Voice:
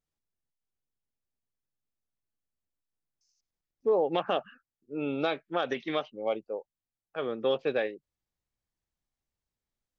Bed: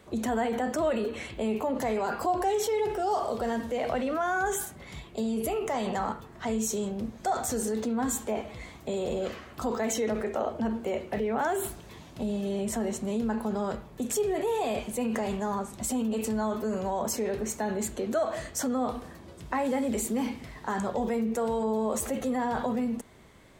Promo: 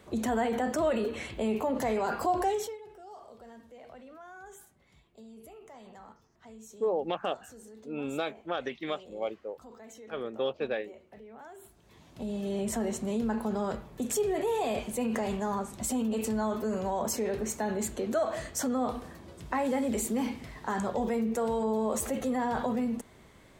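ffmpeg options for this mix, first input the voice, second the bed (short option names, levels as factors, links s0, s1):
-filter_complex "[0:a]adelay=2950,volume=0.668[s0];[1:a]volume=8.91,afade=t=out:st=2.45:d=0.33:silence=0.1,afade=t=in:st=11.73:d=0.87:silence=0.105925[s1];[s0][s1]amix=inputs=2:normalize=0"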